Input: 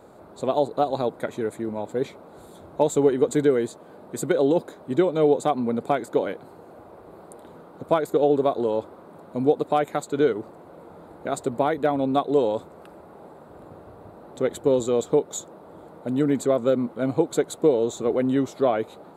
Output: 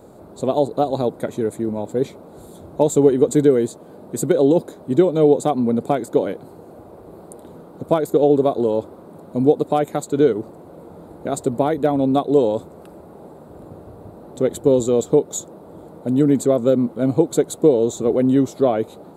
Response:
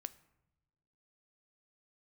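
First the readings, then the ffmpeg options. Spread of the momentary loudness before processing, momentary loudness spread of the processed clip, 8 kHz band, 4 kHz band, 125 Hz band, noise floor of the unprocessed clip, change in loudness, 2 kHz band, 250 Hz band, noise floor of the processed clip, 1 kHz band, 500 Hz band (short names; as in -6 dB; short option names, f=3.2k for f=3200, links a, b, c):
11 LU, 12 LU, +6.0 dB, +1.5 dB, +7.5 dB, -47 dBFS, +5.0 dB, -1.5 dB, +6.5 dB, -43 dBFS, +1.5 dB, +4.5 dB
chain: -af "equalizer=f=1.7k:t=o:w=2.8:g=-10,volume=8dB"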